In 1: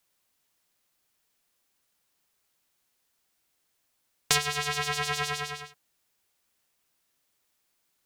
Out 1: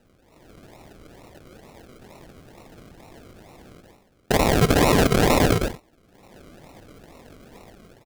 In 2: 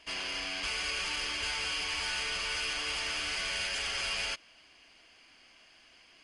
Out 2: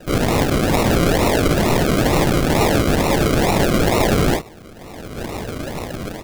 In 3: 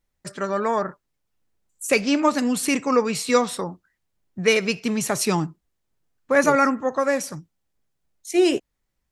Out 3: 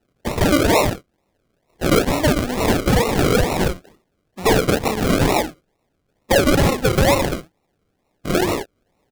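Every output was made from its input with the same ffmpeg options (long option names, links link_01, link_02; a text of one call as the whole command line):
ffmpeg -i in.wav -filter_complex "[0:a]asplit=2[link_01][link_02];[link_02]aecho=0:1:32|60:0.668|0.355[link_03];[link_01][link_03]amix=inputs=2:normalize=0,acompressor=threshold=-24dB:ratio=10,highpass=690,lowpass=7300,acrusher=samples=39:mix=1:aa=0.000001:lfo=1:lforange=23.4:lforate=2.2,apsyclip=26.5dB,dynaudnorm=framelen=290:gausssize=3:maxgain=13.5dB,volume=-8.5dB" out.wav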